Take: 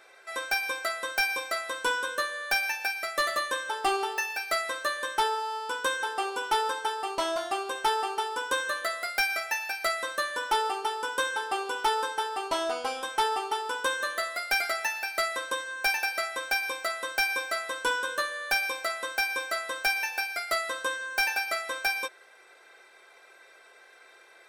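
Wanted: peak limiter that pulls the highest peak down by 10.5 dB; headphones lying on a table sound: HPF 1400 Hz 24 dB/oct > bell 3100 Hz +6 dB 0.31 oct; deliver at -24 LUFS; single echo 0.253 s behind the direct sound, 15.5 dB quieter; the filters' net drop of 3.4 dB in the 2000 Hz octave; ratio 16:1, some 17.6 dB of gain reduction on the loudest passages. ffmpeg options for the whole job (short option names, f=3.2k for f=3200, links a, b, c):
-af "equalizer=f=2k:t=o:g=-4,acompressor=threshold=-40dB:ratio=16,alimiter=level_in=12.5dB:limit=-24dB:level=0:latency=1,volume=-12.5dB,highpass=f=1.4k:w=0.5412,highpass=f=1.4k:w=1.3066,equalizer=f=3.1k:t=o:w=0.31:g=6,aecho=1:1:253:0.168,volume=22.5dB"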